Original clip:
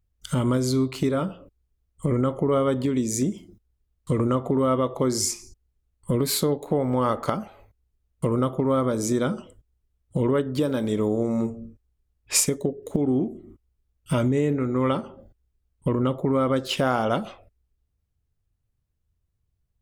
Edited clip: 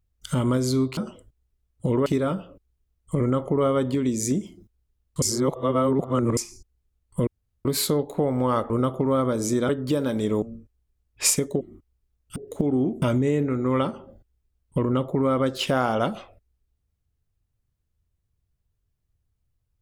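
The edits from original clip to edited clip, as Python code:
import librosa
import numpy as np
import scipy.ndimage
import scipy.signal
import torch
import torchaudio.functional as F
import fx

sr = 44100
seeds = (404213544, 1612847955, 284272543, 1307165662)

y = fx.edit(x, sr, fx.reverse_span(start_s=4.13, length_s=1.15),
    fx.insert_room_tone(at_s=6.18, length_s=0.38),
    fx.cut(start_s=7.23, length_s=1.06),
    fx.move(start_s=9.28, length_s=1.09, to_s=0.97),
    fx.cut(start_s=11.1, length_s=0.42),
    fx.move(start_s=12.71, length_s=0.66, to_s=14.12), tone=tone)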